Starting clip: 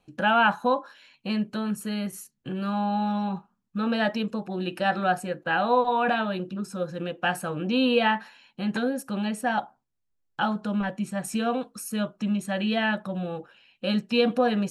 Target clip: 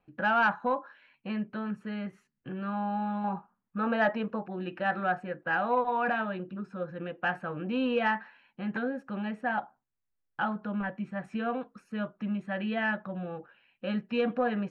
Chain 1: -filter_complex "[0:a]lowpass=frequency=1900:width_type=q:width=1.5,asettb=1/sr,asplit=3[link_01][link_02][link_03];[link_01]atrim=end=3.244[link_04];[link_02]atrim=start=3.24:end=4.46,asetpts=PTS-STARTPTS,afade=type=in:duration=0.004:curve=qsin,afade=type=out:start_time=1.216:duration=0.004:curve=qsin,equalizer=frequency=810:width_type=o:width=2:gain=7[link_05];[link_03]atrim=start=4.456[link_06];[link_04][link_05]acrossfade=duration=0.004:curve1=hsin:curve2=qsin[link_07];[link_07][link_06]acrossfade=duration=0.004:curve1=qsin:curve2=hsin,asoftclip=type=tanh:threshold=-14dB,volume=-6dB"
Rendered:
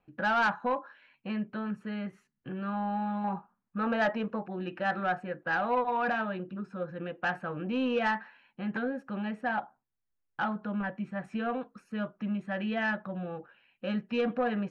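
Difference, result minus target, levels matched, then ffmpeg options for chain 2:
soft clipping: distortion +9 dB
-filter_complex "[0:a]lowpass=frequency=1900:width_type=q:width=1.5,asettb=1/sr,asplit=3[link_01][link_02][link_03];[link_01]atrim=end=3.244[link_04];[link_02]atrim=start=3.24:end=4.46,asetpts=PTS-STARTPTS,afade=type=in:duration=0.004:curve=qsin,afade=type=out:start_time=1.216:duration=0.004:curve=qsin,equalizer=frequency=810:width_type=o:width=2:gain=7[link_05];[link_03]atrim=start=4.456[link_06];[link_04][link_05]acrossfade=duration=0.004:curve1=hsin:curve2=qsin[link_07];[link_07][link_06]acrossfade=duration=0.004:curve1=qsin:curve2=hsin,asoftclip=type=tanh:threshold=-8dB,volume=-6dB"

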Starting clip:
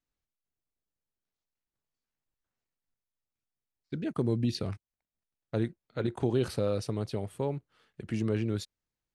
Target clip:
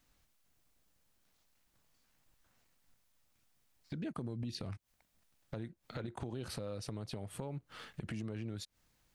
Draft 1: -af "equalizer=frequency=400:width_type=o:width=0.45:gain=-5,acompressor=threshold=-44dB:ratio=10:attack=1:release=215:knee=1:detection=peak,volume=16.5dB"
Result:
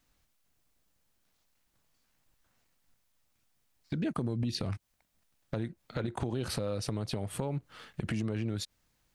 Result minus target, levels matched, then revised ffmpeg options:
downward compressor: peak gain reduction −8 dB
-af "equalizer=frequency=400:width_type=o:width=0.45:gain=-5,acompressor=threshold=-53dB:ratio=10:attack=1:release=215:knee=1:detection=peak,volume=16.5dB"

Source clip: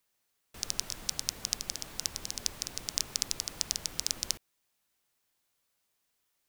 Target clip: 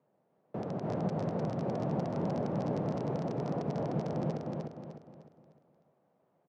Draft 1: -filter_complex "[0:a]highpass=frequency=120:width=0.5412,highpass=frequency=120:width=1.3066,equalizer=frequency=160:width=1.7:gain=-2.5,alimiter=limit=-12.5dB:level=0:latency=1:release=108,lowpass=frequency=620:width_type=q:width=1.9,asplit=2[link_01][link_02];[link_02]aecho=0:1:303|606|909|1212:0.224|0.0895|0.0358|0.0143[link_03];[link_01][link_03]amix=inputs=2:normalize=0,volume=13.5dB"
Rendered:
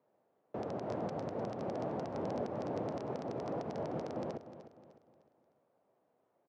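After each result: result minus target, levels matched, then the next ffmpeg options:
echo-to-direct −11 dB; 125 Hz band −6.0 dB
-filter_complex "[0:a]highpass=frequency=120:width=0.5412,highpass=frequency=120:width=1.3066,equalizer=frequency=160:width=1.7:gain=-2.5,alimiter=limit=-12.5dB:level=0:latency=1:release=108,lowpass=frequency=620:width_type=q:width=1.9,asplit=2[link_01][link_02];[link_02]aecho=0:1:303|606|909|1212|1515:0.794|0.318|0.127|0.0508|0.0203[link_03];[link_01][link_03]amix=inputs=2:normalize=0,volume=13.5dB"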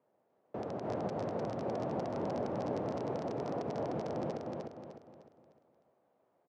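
125 Hz band −5.5 dB
-filter_complex "[0:a]highpass=frequency=120:width=0.5412,highpass=frequency=120:width=1.3066,equalizer=frequency=160:width=1.7:gain=8.5,alimiter=limit=-12.5dB:level=0:latency=1:release=108,lowpass=frequency=620:width_type=q:width=1.9,asplit=2[link_01][link_02];[link_02]aecho=0:1:303|606|909|1212|1515:0.794|0.318|0.127|0.0508|0.0203[link_03];[link_01][link_03]amix=inputs=2:normalize=0,volume=13.5dB"

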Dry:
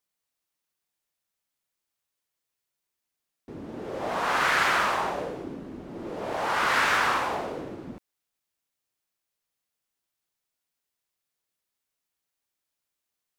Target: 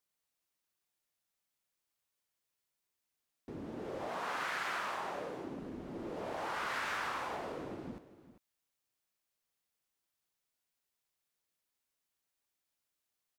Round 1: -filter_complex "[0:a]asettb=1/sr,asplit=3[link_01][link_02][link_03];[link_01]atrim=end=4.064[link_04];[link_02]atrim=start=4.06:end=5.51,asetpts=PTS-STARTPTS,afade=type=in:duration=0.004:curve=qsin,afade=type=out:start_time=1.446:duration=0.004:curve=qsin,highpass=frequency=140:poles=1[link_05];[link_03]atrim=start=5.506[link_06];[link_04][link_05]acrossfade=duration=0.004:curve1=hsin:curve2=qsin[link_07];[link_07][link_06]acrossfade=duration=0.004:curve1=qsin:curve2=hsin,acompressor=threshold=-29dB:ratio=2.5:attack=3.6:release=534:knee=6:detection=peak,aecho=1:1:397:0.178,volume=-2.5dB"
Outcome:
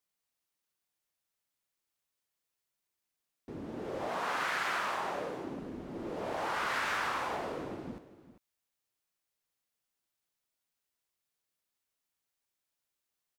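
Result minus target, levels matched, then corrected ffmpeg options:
downward compressor: peak gain reduction −4 dB
-filter_complex "[0:a]asettb=1/sr,asplit=3[link_01][link_02][link_03];[link_01]atrim=end=4.064[link_04];[link_02]atrim=start=4.06:end=5.51,asetpts=PTS-STARTPTS,afade=type=in:duration=0.004:curve=qsin,afade=type=out:start_time=1.446:duration=0.004:curve=qsin,highpass=frequency=140:poles=1[link_05];[link_03]atrim=start=5.506[link_06];[link_04][link_05]acrossfade=duration=0.004:curve1=hsin:curve2=qsin[link_07];[link_07][link_06]acrossfade=duration=0.004:curve1=qsin:curve2=hsin,acompressor=threshold=-36dB:ratio=2.5:attack=3.6:release=534:knee=6:detection=peak,aecho=1:1:397:0.178,volume=-2.5dB"

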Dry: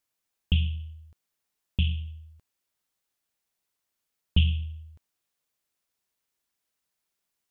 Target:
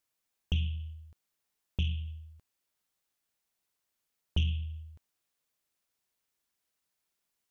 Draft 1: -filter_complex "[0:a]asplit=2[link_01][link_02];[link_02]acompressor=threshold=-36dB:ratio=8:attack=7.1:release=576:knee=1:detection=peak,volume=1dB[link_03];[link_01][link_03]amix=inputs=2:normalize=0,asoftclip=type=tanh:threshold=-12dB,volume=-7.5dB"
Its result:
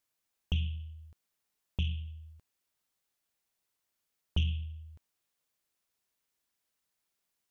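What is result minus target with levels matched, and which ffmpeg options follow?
downward compressor: peak gain reduction +7.5 dB
-filter_complex "[0:a]asplit=2[link_01][link_02];[link_02]acompressor=threshold=-27.5dB:ratio=8:attack=7.1:release=576:knee=1:detection=peak,volume=1dB[link_03];[link_01][link_03]amix=inputs=2:normalize=0,asoftclip=type=tanh:threshold=-12dB,volume=-7.5dB"

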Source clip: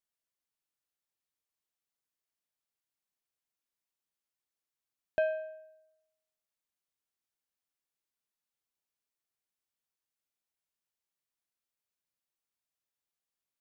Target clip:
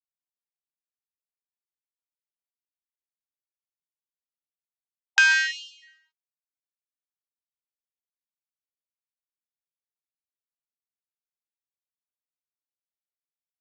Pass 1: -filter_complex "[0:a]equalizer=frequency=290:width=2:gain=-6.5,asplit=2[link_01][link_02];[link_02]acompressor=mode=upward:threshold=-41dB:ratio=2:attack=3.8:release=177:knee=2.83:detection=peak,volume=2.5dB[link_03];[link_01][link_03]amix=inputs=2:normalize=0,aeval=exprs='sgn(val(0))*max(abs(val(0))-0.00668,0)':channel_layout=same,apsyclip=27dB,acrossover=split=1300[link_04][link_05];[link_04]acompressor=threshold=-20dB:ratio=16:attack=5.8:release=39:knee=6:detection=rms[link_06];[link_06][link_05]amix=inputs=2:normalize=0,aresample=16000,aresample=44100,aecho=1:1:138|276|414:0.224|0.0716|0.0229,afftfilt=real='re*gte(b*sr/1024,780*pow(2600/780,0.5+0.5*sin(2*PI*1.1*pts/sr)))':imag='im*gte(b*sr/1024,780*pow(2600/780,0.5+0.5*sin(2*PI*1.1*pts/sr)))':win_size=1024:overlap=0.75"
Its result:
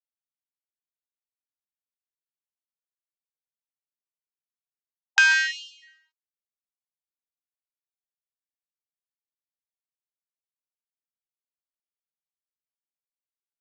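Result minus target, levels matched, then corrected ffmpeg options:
downward compressor: peak gain reduction −6.5 dB
-filter_complex "[0:a]equalizer=frequency=290:width=2:gain=-6.5,asplit=2[link_01][link_02];[link_02]acompressor=mode=upward:threshold=-41dB:ratio=2:attack=3.8:release=177:knee=2.83:detection=peak,volume=2.5dB[link_03];[link_01][link_03]amix=inputs=2:normalize=0,aeval=exprs='sgn(val(0))*max(abs(val(0))-0.00668,0)':channel_layout=same,apsyclip=27dB,acrossover=split=1300[link_04][link_05];[link_04]acompressor=threshold=-27dB:ratio=16:attack=5.8:release=39:knee=6:detection=rms[link_06];[link_06][link_05]amix=inputs=2:normalize=0,aresample=16000,aresample=44100,aecho=1:1:138|276|414:0.224|0.0716|0.0229,afftfilt=real='re*gte(b*sr/1024,780*pow(2600/780,0.5+0.5*sin(2*PI*1.1*pts/sr)))':imag='im*gte(b*sr/1024,780*pow(2600/780,0.5+0.5*sin(2*PI*1.1*pts/sr)))':win_size=1024:overlap=0.75"

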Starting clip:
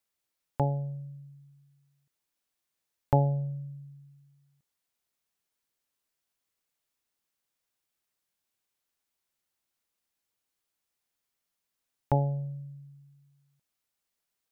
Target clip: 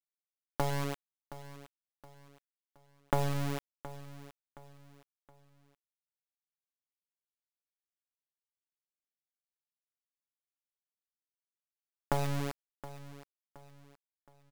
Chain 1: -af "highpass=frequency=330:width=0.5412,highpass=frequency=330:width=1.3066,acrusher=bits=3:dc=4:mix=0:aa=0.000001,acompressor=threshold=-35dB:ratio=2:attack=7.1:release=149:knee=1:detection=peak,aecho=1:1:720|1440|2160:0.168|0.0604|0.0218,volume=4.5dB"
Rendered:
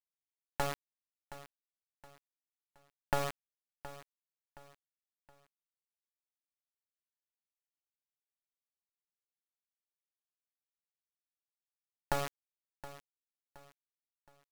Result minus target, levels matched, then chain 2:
125 Hz band −9.0 dB
-af "highpass=frequency=120:width=0.5412,highpass=frequency=120:width=1.3066,acrusher=bits=3:dc=4:mix=0:aa=0.000001,acompressor=threshold=-35dB:ratio=2:attack=7.1:release=149:knee=1:detection=peak,aecho=1:1:720|1440|2160:0.168|0.0604|0.0218,volume=4.5dB"

